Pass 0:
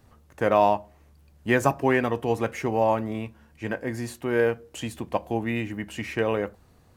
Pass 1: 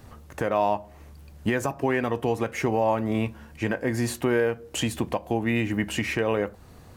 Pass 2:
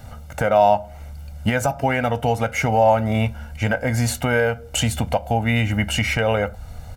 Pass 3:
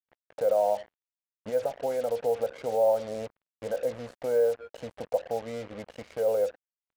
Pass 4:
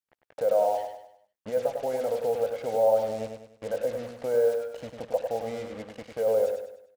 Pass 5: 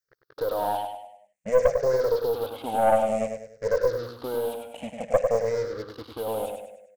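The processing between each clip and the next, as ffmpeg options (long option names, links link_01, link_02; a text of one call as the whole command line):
ffmpeg -i in.wav -filter_complex "[0:a]asplit=2[link_01][link_02];[link_02]acompressor=threshold=-30dB:ratio=6,volume=2.5dB[link_03];[link_01][link_03]amix=inputs=2:normalize=0,alimiter=limit=-15dB:level=0:latency=1:release=330,volume=2dB" out.wav
ffmpeg -i in.wav -af "aecho=1:1:1.4:0.83,asubboost=boost=3:cutoff=83,volume=5dB" out.wav
ffmpeg -i in.wav -af "bandpass=frequency=500:width_type=q:width=5.7:csg=0,acrusher=bits=6:mix=0:aa=0.5" out.wav
ffmpeg -i in.wav -af "aecho=1:1:100|200|300|400|500:0.501|0.205|0.0842|0.0345|0.0142" out.wav
ffmpeg -i in.wav -af "afftfilt=real='re*pow(10,18/40*sin(2*PI*(0.56*log(max(b,1)*sr/1024/100)/log(2)-(-0.54)*(pts-256)/sr)))':imag='im*pow(10,18/40*sin(2*PI*(0.56*log(max(b,1)*sr/1024/100)/log(2)-(-0.54)*(pts-256)/sr)))':win_size=1024:overlap=0.75,aeval=exprs='(tanh(4.47*val(0)+0.45)-tanh(0.45))/4.47':channel_layout=same,volume=2.5dB" out.wav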